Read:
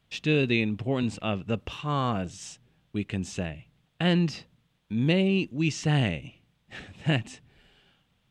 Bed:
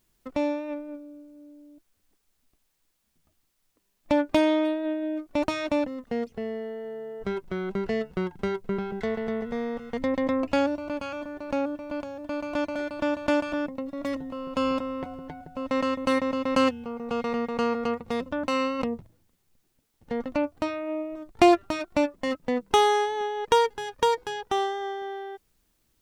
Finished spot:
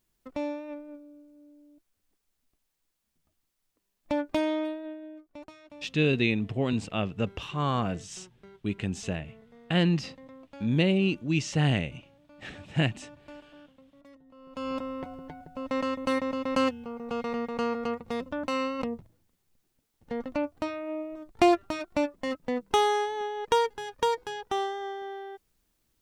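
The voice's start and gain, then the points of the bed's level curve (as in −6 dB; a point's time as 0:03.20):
5.70 s, −0.5 dB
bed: 0:04.63 −6 dB
0:05.62 −23.5 dB
0:14.19 −23.5 dB
0:14.81 −3.5 dB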